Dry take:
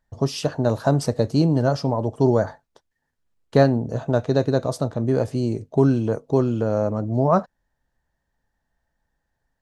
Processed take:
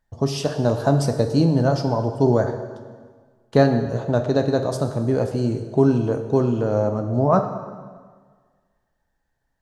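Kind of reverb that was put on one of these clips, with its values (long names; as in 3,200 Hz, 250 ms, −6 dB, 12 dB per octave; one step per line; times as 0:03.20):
dense smooth reverb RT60 1.6 s, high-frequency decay 0.85×, DRR 6.5 dB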